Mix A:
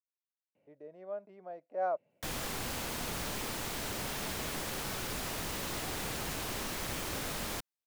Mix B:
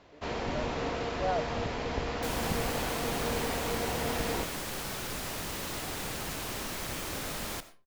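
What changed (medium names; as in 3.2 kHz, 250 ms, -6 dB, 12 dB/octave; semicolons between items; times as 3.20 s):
speech: entry -0.55 s; first sound: unmuted; reverb: on, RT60 0.35 s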